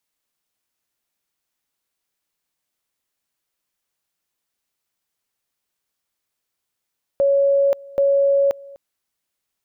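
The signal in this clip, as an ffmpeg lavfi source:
-f lavfi -i "aevalsrc='pow(10,(-13-23.5*gte(mod(t,0.78),0.53))/20)*sin(2*PI*557*t)':d=1.56:s=44100"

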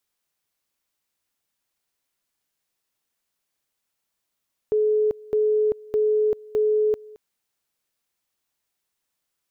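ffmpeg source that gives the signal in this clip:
-f lavfi -i "aevalsrc='pow(10,(-17-23*gte(mod(t,0.61),0.39))/20)*sin(2*PI*427*t)':d=2.44:s=44100"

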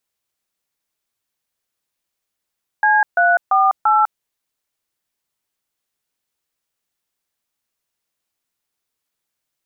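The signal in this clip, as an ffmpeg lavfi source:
-f lavfi -i "aevalsrc='0.211*clip(min(mod(t,0.341),0.2-mod(t,0.341))/0.002,0,1)*(eq(floor(t/0.341),0)*(sin(2*PI*852*mod(t,0.341))+sin(2*PI*1633*mod(t,0.341)))+eq(floor(t/0.341),1)*(sin(2*PI*697*mod(t,0.341))+sin(2*PI*1477*mod(t,0.341)))+eq(floor(t/0.341),2)*(sin(2*PI*770*mod(t,0.341))+sin(2*PI*1209*mod(t,0.341)))+eq(floor(t/0.341),3)*(sin(2*PI*852*mod(t,0.341))+sin(2*PI*1336*mod(t,0.341))))':d=1.364:s=44100"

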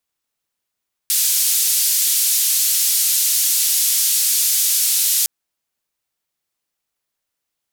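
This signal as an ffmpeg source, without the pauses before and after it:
-f lavfi -i "anoisesrc=c=white:d=4.16:r=44100:seed=1,highpass=f=4600,lowpass=f=15000,volume=-8.7dB"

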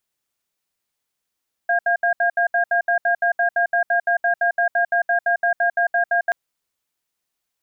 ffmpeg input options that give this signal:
-f lavfi -i "aevalsrc='0.126*(sin(2*PI*695*t)+sin(2*PI*1620*t))*clip(min(mod(t,0.17),0.1-mod(t,0.17))/0.005,0,1)':d=4.63:s=44100"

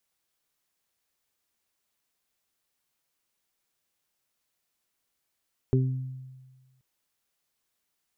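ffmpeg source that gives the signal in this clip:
-f lavfi -i "aevalsrc='0.112*pow(10,-3*t/1.41)*sin(2*PI*130*t)+0.0562*pow(10,-3*t/0.69)*sin(2*PI*260*t)+0.075*pow(10,-3*t/0.3)*sin(2*PI*390*t)':d=1.08:s=44100"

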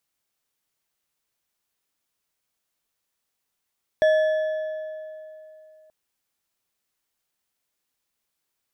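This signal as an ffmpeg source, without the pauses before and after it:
-f lavfi -i "aevalsrc='0.2*pow(10,-3*t/2.99)*sin(2*PI*625*t)+0.0562*pow(10,-3*t/2.206)*sin(2*PI*1723.1*t)+0.0158*pow(10,-3*t/1.802)*sin(2*PI*3377.5*t)+0.00447*pow(10,-3*t/1.55)*sin(2*PI*5583.1*t)+0.00126*pow(10,-3*t/1.374)*sin(2*PI*8337.5*t)':d=1.88:s=44100"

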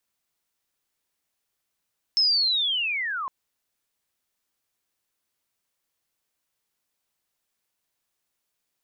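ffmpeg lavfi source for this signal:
-f lavfi -i "aevalsrc='pow(10,(-17-10.5*t/1.11)/20)*sin(2*PI*(5300*t-4300*t*t/(2*1.11)))':d=1.11:s=44100"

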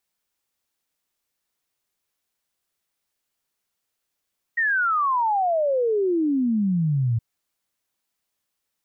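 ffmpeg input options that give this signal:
-f lavfi -i "aevalsrc='0.119*clip(min(t,2.62-t)/0.01,0,1)*sin(2*PI*1900*2.62/log(110/1900)*(exp(log(110/1900)*t/2.62)-1))':d=2.62:s=44100"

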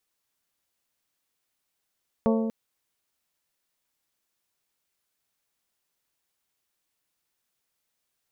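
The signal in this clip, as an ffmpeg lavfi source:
-f lavfi -i "aevalsrc='0.1*pow(10,-3*t/1.86)*sin(2*PI*224*t)+0.0708*pow(10,-3*t/1.145)*sin(2*PI*448*t)+0.0501*pow(10,-3*t/1.008)*sin(2*PI*537.6*t)+0.0355*pow(10,-3*t/0.862)*sin(2*PI*672*t)+0.0251*pow(10,-3*t/0.705)*sin(2*PI*896*t)+0.0178*pow(10,-3*t/0.603)*sin(2*PI*1120*t)':d=0.24:s=44100"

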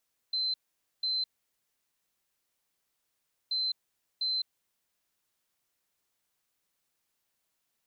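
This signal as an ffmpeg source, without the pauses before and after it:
-f lavfi -i "aevalsrc='0.0422*sin(2*PI*4080*t)*clip(min(mod(mod(t,3.18),0.7),0.21-mod(mod(t,3.18),0.7))/0.005,0,1)*lt(mod(t,3.18),1.4)':d=6.36:s=44100"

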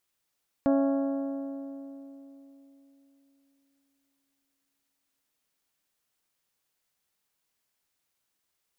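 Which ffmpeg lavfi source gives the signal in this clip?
-f lavfi -i "aevalsrc='0.0944*pow(10,-3*t/3.68)*sin(2*PI*276*t)+0.0531*pow(10,-3*t/2.989)*sin(2*PI*552*t)+0.0299*pow(10,-3*t/2.83)*sin(2*PI*662.4*t)+0.0168*pow(10,-3*t/2.647)*sin(2*PI*828*t)+0.00944*pow(10,-3*t/2.428)*sin(2*PI*1104*t)+0.00531*pow(10,-3*t/2.271)*sin(2*PI*1380*t)+0.00299*pow(10,-3*t/2.15)*sin(2*PI*1656*t)':d=5.25:s=44100"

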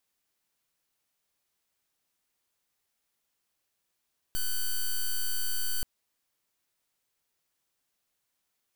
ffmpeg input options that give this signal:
-f lavfi -i "aevalsrc='0.0398*(2*lt(mod(4560*t,1),0.06)-1)':d=1.48:s=44100"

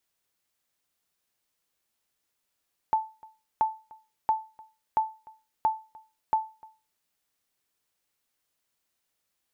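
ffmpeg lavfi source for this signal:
-f lavfi -i "aevalsrc='0.158*(sin(2*PI*878*mod(t,0.68))*exp(-6.91*mod(t,0.68)/0.31)+0.0596*sin(2*PI*878*max(mod(t,0.68)-0.3,0))*exp(-6.91*max(mod(t,0.68)-0.3,0)/0.31))':d=4.08:s=44100"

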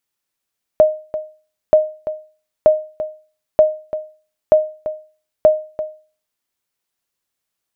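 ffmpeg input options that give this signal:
-f lavfi -i "aevalsrc='0.75*(sin(2*PI*619*mod(t,0.93))*exp(-6.91*mod(t,0.93)/0.38)+0.224*sin(2*PI*619*max(mod(t,0.93)-0.34,0))*exp(-6.91*max(mod(t,0.93)-0.34,0)/0.38))':d=5.58:s=44100"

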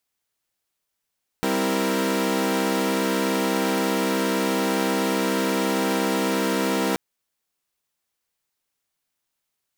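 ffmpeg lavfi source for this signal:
-f lavfi -i "aevalsrc='0.0631*((2*mod(196*t,1)-1)+(2*mod(261.63*t,1)-1)+(2*mod(329.63*t,1)-1)+(2*mod(466.16*t,1)-1))':d=5.53:s=44100"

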